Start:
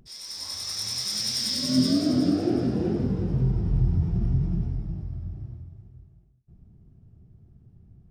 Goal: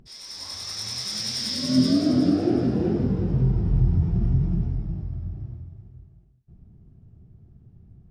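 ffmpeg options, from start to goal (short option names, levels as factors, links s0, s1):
-af "highshelf=f=7000:g=-10.5,volume=1.33"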